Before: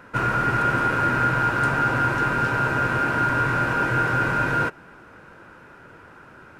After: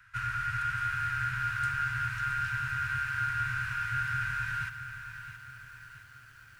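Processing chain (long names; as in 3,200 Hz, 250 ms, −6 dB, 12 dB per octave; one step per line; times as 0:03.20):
Chebyshev band-stop filter 110–1,500 Hz, order 3
feedback echo at a low word length 670 ms, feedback 55%, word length 8 bits, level −10 dB
level −7.5 dB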